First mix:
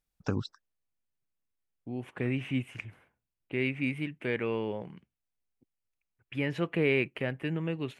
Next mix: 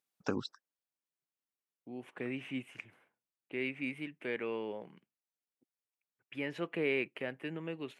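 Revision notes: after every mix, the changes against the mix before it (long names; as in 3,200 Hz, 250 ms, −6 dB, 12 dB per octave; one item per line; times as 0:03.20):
second voice −5.0 dB
master: add high-pass filter 240 Hz 12 dB per octave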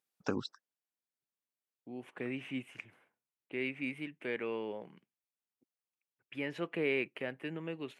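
nothing changed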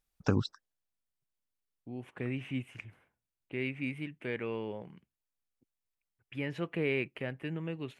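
first voice +3.0 dB
master: remove high-pass filter 240 Hz 12 dB per octave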